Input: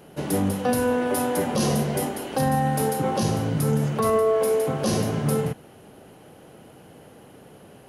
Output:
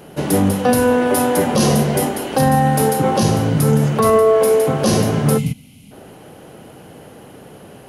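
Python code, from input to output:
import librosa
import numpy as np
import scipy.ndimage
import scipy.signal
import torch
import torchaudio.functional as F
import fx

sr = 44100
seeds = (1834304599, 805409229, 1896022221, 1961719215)

y = fx.spec_box(x, sr, start_s=5.38, length_s=0.53, low_hz=280.0, high_hz=2000.0, gain_db=-20)
y = F.gain(torch.from_numpy(y), 8.0).numpy()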